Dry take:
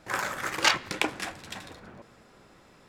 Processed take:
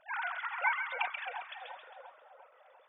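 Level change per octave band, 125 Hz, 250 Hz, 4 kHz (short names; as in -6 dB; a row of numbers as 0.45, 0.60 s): under -40 dB, under -40 dB, -17.5 dB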